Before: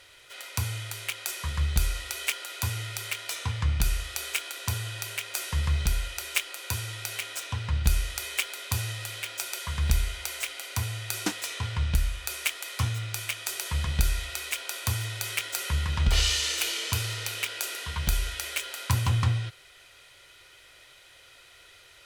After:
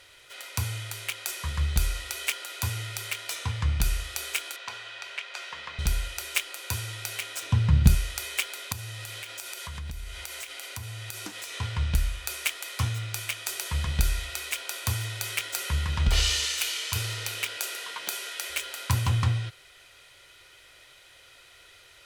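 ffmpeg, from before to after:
-filter_complex "[0:a]asettb=1/sr,asplit=3[a][b][c];[a]atrim=end=4.564[d];[b]atrim=start=4.56:end=5.79,asetpts=PTS-STARTPTS,afade=t=in:d=0.004:c=qsin,afade=t=out:st=1.226:d=0.004:c=qsin,highpass=580,lowpass=3.7k[e];[c]atrim=start=5.786[f];[d][e]acrossfade=d=0.004:c1=hsin:c2=qsin[g];[g][f]acrossfade=d=0.004:c1=qsin:c2=hsin,asettb=1/sr,asplit=3[h][i][j];[h]atrim=end=7.424[k];[i]atrim=start=7.42:end=7.95,asetpts=PTS-STARTPTS,afade=t=in:d=0.004:c=qsin,afade=t=out:st=0.526:d=0.004:c=qsin,equalizer=f=160:t=o:w=1.8:g=15[l];[j]atrim=start=7.946[m];[k][l]acrossfade=d=0.004:c1=hsin:c2=qsin[n];[n][m]acrossfade=d=0.004:c1=qsin:c2=hsin,asettb=1/sr,asplit=3[o][p][q];[o]atrim=end=8.724[r];[p]atrim=start=8.72:end=11.54,asetpts=PTS-STARTPTS,afade=t=in:d=0.004:c=qsin,afade=t=out:st=2.816:d=0.004:c=qsin,acompressor=threshold=-34dB:ratio=6:attack=3.2:release=140:knee=1:detection=peak[s];[q]atrim=start=11.536[t];[r][s]acrossfade=d=0.004:c1=hsin:c2=qsin[u];[u][t]acrossfade=d=0.004:c1=qsin:c2=hsin,asettb=1/sr,asplit=3[v][w][x];[v]atrim=end=16.454[y];[w]atrim=start=16.45:end=16.96,asetpts=PTS-STARTPTS,afade=t=in:d=0.004:c=qsin,afade=t=out:st=0.506:d=0.004:c=qsin,equalizer=f=240:w=0.56:g=-12[z];[x]atrim=start=16.956[aa];[y][z]acrossfade=d=0.004:c1=hsin:c2=qsin[ab];[ab][aa]acrossfade=d=0.004:c1=qsin:c2=hsin,asettb=1/sr,asplit=3[ac][ad][ae];[ac]atrim=end=17.574[af];[ad]atrim=start=17.57:end=18.5,asetpts=PTS-STARTPTS,afade=t=in:d=0.004:c=qsin,afade=t=out:st=0.926:d=0.004:c=qsin,highpass=f=330:w=0.5412,highpass=f=330:w=1.3066[ag];[ae]atrim=start=18.496[ah];[af][ag]acrossfade=d=0.004:c1=hsin:c2=qsin[ai];[ai][ah]acrossfade=d=0.004:c1=qsin:c2=hsin"

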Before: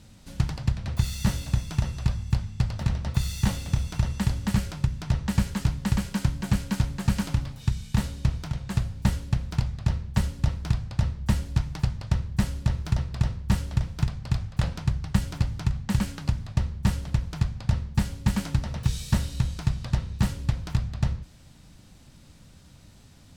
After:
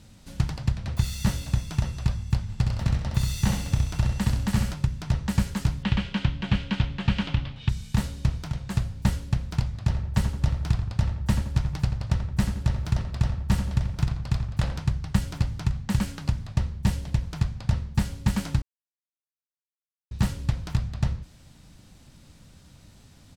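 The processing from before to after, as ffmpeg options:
-filter_complex "[0:a]asplit=3[a][b][c];[a]afade=t=out:st=2.48:d=0.02[d];[b]aecho=1:1:65|130|195|260:0.562|0.202|0.0729|0.0262,afade=t=in:st=2.48:d=0.02,afade=t=out:st=4.73:d=0.02[e];[c]afade=t=in:st=4.73:d=0.02[f];[d][e][f]amix=inputs=3:normalize=0,asettb=1/sr,asplit=3[g][h][i];[g]atrim=end=5.834[j];[h]atrim=start=5.83:end=7.69,asetpts=PTS-STARTPTS,afade=t=in:d=0.004:c=qsin,afade=t=out:st=1.856:d=0.004:c=qsin,lowpass=f=3.1k:t=q:w=2.7[k];[i]atrim=start=7.686[l];[j][k]acrossfade=d=0.004:c1=hsin:c2=qsin[m];[m][l]acrossfade=d=0.004:c1=qsin:c2=hsin,asettb=1/sr,asplit=3[n][o][p];[n]atrim=end=9.664[q];[o]atrim=start=9.66:end=14.8,asetpts=PTS-STARTPTS,afade=t=in:d=0.004:c=qsin,afade=t=out:st=5.136:d=0.004:c=qsin,asplit=2[r][s];[s]adelay=85,lowpass=f=2k:p=1,volume=-7dB,asplit=2[t][u];[u]adelay=85,lowpass=f=2k:p=1,volume=0.46,asplit=2[v][w];[w]adelay=85,lowpass=f=2k:p=1,volume=0.46,asplit=2[x][y];[y]adelay=85,lowpass=f=2k:p=1,volume=0.46,asplit=2[z][aa];[aa]adelay=85,lowpass=f=2k:p=1,volume=0.46[ab];[r][t][v][x][z][ab]amix=inputs=6:normalize=0,atrim=end_sample=226674[ac];[p]atrim=start=14.796[ad];[q][ac]acrossfade=d=0.004:c1=hsin:c2=qsin[ae];[ae][ad]acrossfade=d=0.004:c1=qsin:c2=hsin,asettb=1/sr,asplit=3[af][ag][ah];[af]atrim=end=16.824[ai];[ag]atrim=start=16.82:end=17.23,asetpts=PTS-STARTPTS,afade=t=in:d=0.004:c=qsin,afade=t=out:st=0.406:d=0.004:c=qsin,equalizer=f=1.3k:t=o:w=0.43:g=-5.5[aj];[ah]atrim=start=17.226[ak];[ai][aj]acrossfade=d=0.004:c1=hsin:c2=qsin[al];[al][ak]acrossfade=d=0.004:c1=qsin:c2=hsin,asplit=3[am][an][ao];[am]atrim=end=18.62,asetpts=PTS-STARTPTS,afade=t=out:st=18.616:d=0.004:c=hsin[ap];[an]atrim=start=18.62:end=20.11,asetpts=PTS-STARTPTS,volume=0[aq];[ao]atrim=start=20.11,asetpts=PTS-STARTPTS,afade=t=in:d=0.004:c=hsin[ar];[ap][aq][ar]concat=n=3:v=0:a=1"

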